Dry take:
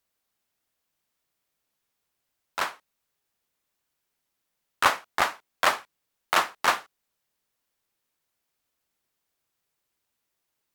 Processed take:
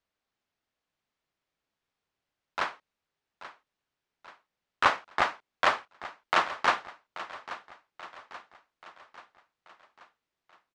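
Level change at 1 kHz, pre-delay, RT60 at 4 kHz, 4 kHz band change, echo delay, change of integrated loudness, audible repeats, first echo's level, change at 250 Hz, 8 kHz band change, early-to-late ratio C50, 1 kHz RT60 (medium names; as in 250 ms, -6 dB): -1.5 dB, no reverb, no reverb, -4.0 dB, 833 ms, -3.0 dB, 4, -15.0 dB, -1.0 dB, -11.5 dB, no reverb, no reverb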